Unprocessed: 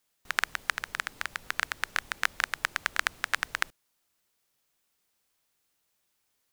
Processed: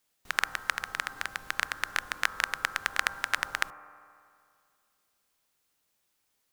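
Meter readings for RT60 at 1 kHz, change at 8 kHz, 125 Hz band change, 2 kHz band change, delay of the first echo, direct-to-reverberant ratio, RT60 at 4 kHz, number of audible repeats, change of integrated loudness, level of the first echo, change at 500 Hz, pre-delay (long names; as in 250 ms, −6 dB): 2.2 s, 0.0 dB, 0.0 dB, 0.0 dB, no echo audible, 10.5 dB, 2.2 s, no echo audible, 0.0 dB, no echo audible, +1.0 dB, 23 ms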